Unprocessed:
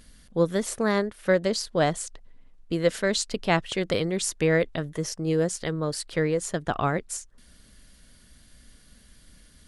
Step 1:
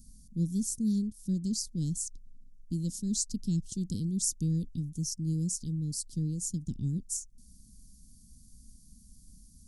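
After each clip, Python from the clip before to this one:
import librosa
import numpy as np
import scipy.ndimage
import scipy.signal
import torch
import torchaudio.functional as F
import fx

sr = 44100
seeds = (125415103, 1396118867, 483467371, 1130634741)

y = scipy.signal.sosfilt(scipy.signal.ellip(3, 1.0, 50, [230.0, 5800.0], 'bandstop', fs=sr, output='sos'), x)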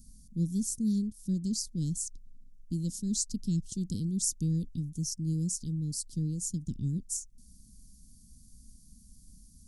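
y = fx.peak_eq(x, sr, hz=860.0, db=-13.5, octaves=0.28)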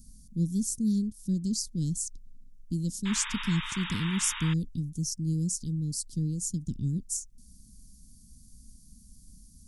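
y = fx.spec_paint(x, sr, seeds[0], shape='noise', start_s=3.05, length_s=1.49, low_hz=850.0, high_hz=3800.0, level_db=-40.0)
y = y * 10.0 ** (2.0 / 20.0)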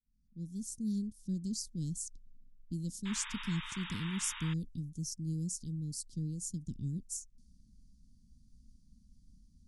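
y = fx.fade_in_head(x, sr, length_s=0.98)
y = fx.env_lowpass(y, sr, base_hz=2900.0, full_db=-28.5)
y = y * 10.0 ** (-7.5 / 20.0)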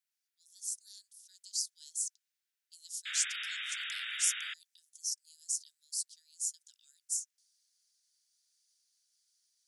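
y = scipy.signal.sosfilt(scipy.signal.butter(12, 1400.0, 'highpass', fs=sr, output='sos'), x)
y = y * 10.0 ** (6.5 / 20.0)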